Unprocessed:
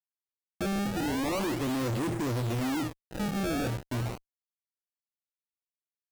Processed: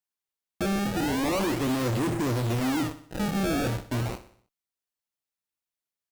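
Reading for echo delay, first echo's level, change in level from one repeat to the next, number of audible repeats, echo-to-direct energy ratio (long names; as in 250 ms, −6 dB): 62 ms, −14.0 dB, −6.0 dB, 4, −12.5 dB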